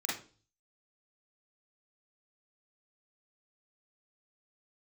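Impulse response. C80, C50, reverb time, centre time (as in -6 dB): 11.0 dB, 3.0 dB, 0.40 s, 45 ms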